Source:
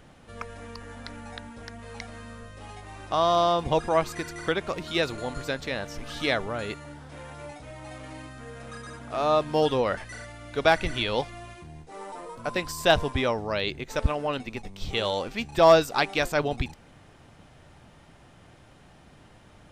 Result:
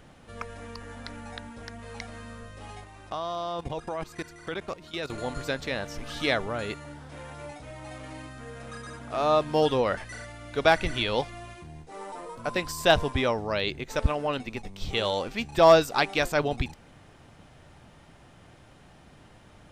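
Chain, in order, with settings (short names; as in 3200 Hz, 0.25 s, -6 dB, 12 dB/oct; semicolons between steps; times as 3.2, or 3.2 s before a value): 2.84–5.1 level quantiser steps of 16 dB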